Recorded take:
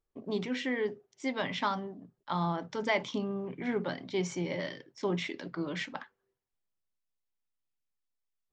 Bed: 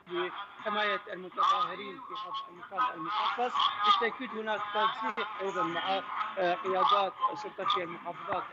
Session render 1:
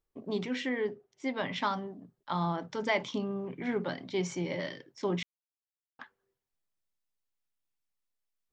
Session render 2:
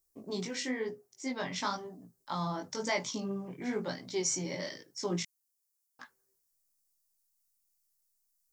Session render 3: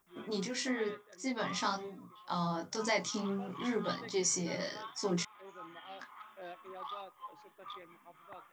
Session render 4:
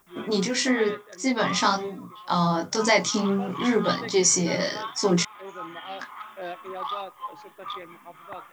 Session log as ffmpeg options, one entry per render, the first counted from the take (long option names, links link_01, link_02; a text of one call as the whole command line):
ffmpeg -i in.wav -filter_complex "[0:a]asettb=1/sr,asplit=3[link_01][link_02][link_03];[link_01]atrim=end=0.694[link_04];[link_02]atrim=start=0.69:end=1.56,asetpts=PTS-STARTPTS,afade=type=in:duration=0.004:curve=qsin,afade=type=out:start_time=0.866:duration=0.004:curve=qsin,lowpass=frequency=3400:poles=1[link_05];[link_03]atrim=start=1.556[link_06];[link_04][link_05]acrossfade=duration=0.004:curve1=hsin:curve2=qsin[link_07];[link_07][link_06]acrossfade=duration=0.004:curve1=qsin:curve2=hsin,asplit=3[link_08][link_09][link_10];[link_08]atrim=end=5.23,asetpts=PTS-STARTPTS,afade=type=out:start_time=5.226:duration=0.004:curve=hsin[link_11];[link_09]atrim=start=5.23:end=5.99,asetpts=PTS-STARTPTS,volume=0[link_12];[link_10]atrim=start=5.99,asetpts=PTS-STARTPTS,afade=type=in:duration=0.004:curve=hsin[link_13];[link_11][link_12][link_13]concat=n=3:v=0:a=1" out.wav
ffmpeg -i in.wav -af "flanger=delay=16.5:depth=5.3:speed=1,aexciter=amount=7.1:drive=5:freq=4700" out.wav
ffmpeg -i in.wav -i bed.wav -filter_complex "[1:a]volume=-18dB[link_01];[0:a][link_01]amix=inputs=2:normalize=0" out.wav
ffmpeg -i in.wav -af "volume=12dB" out.wav